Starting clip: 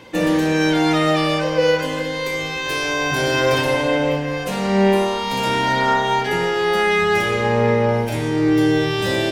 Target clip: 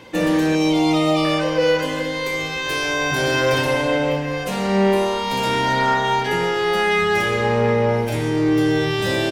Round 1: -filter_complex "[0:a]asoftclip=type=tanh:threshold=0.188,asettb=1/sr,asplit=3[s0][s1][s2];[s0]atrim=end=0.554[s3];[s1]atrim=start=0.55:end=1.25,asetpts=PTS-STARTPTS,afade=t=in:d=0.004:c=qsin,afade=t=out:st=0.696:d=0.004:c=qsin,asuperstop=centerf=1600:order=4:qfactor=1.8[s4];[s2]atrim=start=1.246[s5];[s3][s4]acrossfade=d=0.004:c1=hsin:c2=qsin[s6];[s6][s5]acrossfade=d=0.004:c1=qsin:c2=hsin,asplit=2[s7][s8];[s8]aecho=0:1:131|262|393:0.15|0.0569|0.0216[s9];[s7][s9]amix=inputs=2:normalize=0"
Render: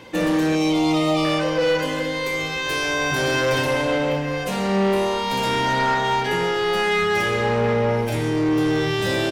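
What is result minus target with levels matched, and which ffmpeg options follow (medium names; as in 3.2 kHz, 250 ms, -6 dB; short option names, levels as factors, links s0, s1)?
saturation: distortion +10 dB
-filter_complex "[0:a]asoftclip=type=tanh:threshold=0.422,asettb=1/sr,asplit=3[s0][s1][s2];[s0]atrim=end=0.554[s3];[s1]atrim=start=0.55:end=1.25,asetpts=PTS-STARTPTS,afade=t=in:d=0.004:c=qsin,afade=t=out:st=0.696:d=0.004:c=qsin,asuperstop=centerf=1600:order=4:qfactor=1.8[s4];[s2]atrim=start=1.246[s5];[s3][s4]acrossfade=d=0.004:c1=hsin:c2=qsin[s6];[s6][s5]acrossfade=d=0.004:c1=qsin:c2=hsin,asplit=2[s7][s8];[s8]aecho=0:1:131|262|393:0.15|0.0569|0.0216[s9];[s7][s9]amix=inputs=2:normalize=0"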